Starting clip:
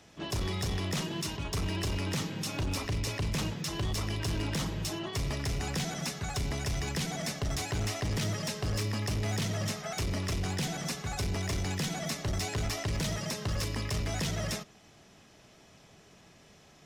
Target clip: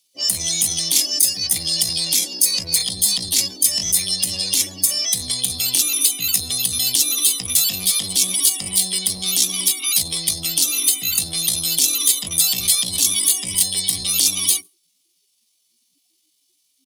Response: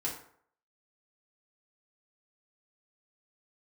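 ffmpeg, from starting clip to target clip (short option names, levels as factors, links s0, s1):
-af "aecho=1:1:139:0.0944,asetrate=78577,aresample=44100,atempo=0.561231,afftdn=nr=29:nf=-43,asoftclip=type=tanh:threshold=0.0376,aexciter=amount=12.4:drive=8.7:freq=2400,volume=0.75"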